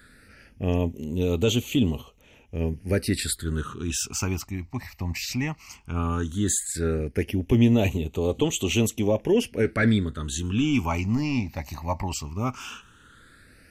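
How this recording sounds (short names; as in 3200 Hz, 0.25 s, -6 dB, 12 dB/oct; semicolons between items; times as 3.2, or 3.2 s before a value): phasing stages 8, 0.15 Hz, lowest notch 430–1600 Hz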